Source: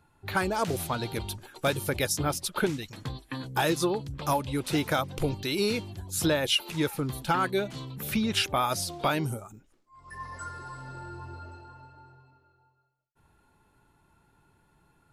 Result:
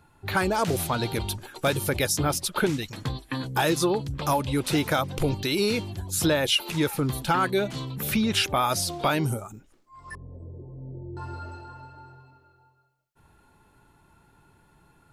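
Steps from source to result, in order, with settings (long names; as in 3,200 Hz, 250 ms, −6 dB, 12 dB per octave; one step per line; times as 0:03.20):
0:10.15–0:11.17: inverse Chebyshev low-pass filter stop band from 1,300 Hz, stop band 50 dB
in parallel at +2 dB: brickwall limiter −23.5 dBFS, peak gain reduction 8 dB
on the sum: level −1.5 dB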